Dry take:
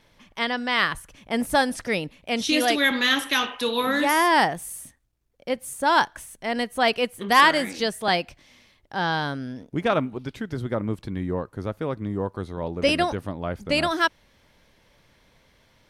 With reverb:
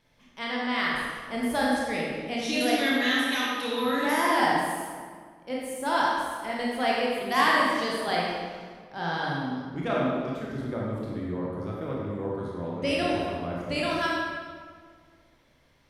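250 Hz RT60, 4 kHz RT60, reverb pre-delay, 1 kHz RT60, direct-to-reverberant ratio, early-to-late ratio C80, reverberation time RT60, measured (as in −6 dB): 2.2 s, 1.3 s, 22 ms, 1.8 s, −5.0 dB, 0.0 dB, 1.8 s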